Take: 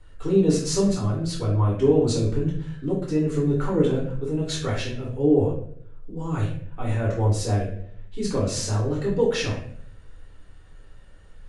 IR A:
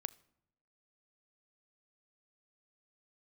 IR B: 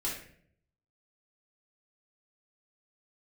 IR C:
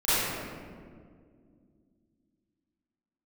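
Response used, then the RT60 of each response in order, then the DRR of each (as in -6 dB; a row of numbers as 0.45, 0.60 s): B; not exponential, 0.60 s, 2.1 s; 17.0, -6.5, -17.5 dB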